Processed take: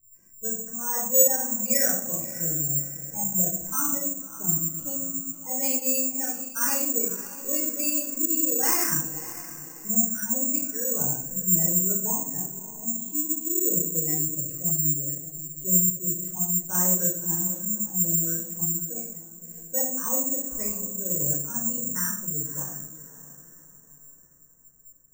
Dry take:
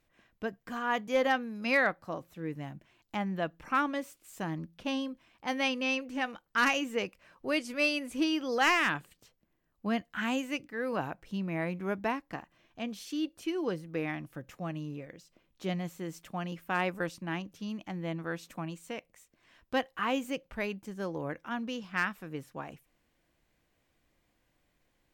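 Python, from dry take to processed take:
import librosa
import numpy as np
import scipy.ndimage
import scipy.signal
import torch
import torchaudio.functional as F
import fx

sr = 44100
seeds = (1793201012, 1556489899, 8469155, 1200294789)

p1 = fx.spec_gate(x, sr, threshold_db=-10, keep='strong')
p2 = fx.lowpass(p1, sr, hz=2000.0, slope=6)
p3 = fx.low_shelf(p2, sr, hz=340.0, db=8.5)
p4 = p3 + fx.echo_diffused(p3, sr, ms=591, feedback_pct=40, wet_db=-14.0, dry=0)
p5 = fx.room_shoebox(p4, sr, seeds[0], volume_m3=990.0, walls='furnished', distance_m=4.8)
p6 = (np.kron(scipy.signal.resample_poly(p5, 1, 6), np.eye(6)[0]) * 6)[:len(p5)]
y = F.gain(torch.from_numpy(p6), -10.5).numpy()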